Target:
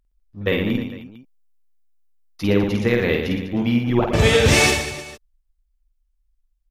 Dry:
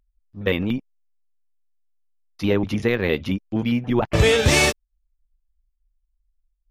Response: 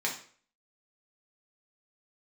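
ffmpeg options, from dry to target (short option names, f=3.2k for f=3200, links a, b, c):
-filter_complex "[0:a]asettb=1/sr,asplit=3[a][b][c];[a]atrim=end=0.654[d];[b]atrim=start=0.65:end=2.47,asetpts=PTS-STARTPTS,afade=t=in:d=0.004:c=qsin,afade=t=out:st=1.816:d=0.004:c=qsin,highshelf=f=10k:g=7[e];[c]atrim=start=2.466[f];[d][e]acrossfade=d=0.004:c1=hsin:c2=qsin[g];[g][f]acrossfade=d=0.004:c1=qsin:c2=hsin,aecho=1:1:50|115|199.5|309.4|452.2:0.631|0.398|0.251|0.158|0.1"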